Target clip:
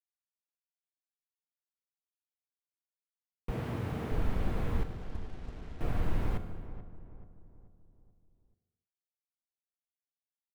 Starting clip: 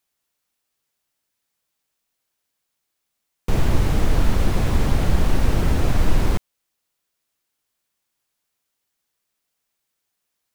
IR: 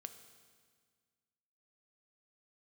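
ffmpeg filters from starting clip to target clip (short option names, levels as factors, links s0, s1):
-filter_complex "[0:a]asettb=1/sr,asplit=3[s0][s1][s2];[s0]atrim=end=3.514[s3];[s1]atrim=start=3.51:end=4.12,asetpts=PTS-STARTPTS,afade=t=in:d=0.004:c=qsin,afade=t=out:st=0.606:d=0.004:c=qsin,highpass=f=85:w=0.5412,highpass=f=85:w=1.3066[s4];[s2]atrim=start=4.116[s5];[s3][s4]acrossfade=d=0.004:c1=hsin:c2=qsin[s6];[s6][s5]acrossfade=d=0.004:c1=qsin:c2=hsin,asettb=1/sr,asplit=3[s7][s8][s9];[s7]atrim=end=4.834[s10];[s8]atrim=start=4.83:end=5.81,asetpts=PTS-STARTPTS,afade=t=in:d=0.004:c=qsin,afade=t=out:st=0.976:d=0.004:c=qsin,agate=range=0.178:threshold=0.316:ratio=16:detection=peak[s11];[s9]atrim=start=5.806[s12];[s10][s11]acrossfade=d=0.004:c1=hsin:c2=qsin[s13];[s13][s12]acrossfade=d=0.004:c1=qsin:c2=hsin,lowpass=2700,acrusher=bits=6:mix=0:aa=0.5,asplit=2[s14][s15];[s15]adelay=433,lowpass=f=1300:p=1,volume=0.237,asplit=2[s16][s17];[s17]adelay=433,lowpass=f=1300:p=1,volume=0.46,asplit=2[s18][s19];[s19]adelay=433,lowpass=f=1300:p=1,volume=0.46,asplit=2[s20][s21];[s21]adelay=433,lowpass=f=1300:p=1,volume=0.46,asplit=2[s22][s23];[s23]adelay=433,lowpass=f=1300:p=1,volume=0.46[s24];[s14][s16][s18][s20][s22][s24]amix=inputs=6:normalize=0[s25];[1:a]atrim=start_sample=2205,afade=t=out:st=0.38:d=0.01,atrim=end_sample=17199[s26];[s25][s26]afir=irnorm=-1:irlink=0,volume=0.447"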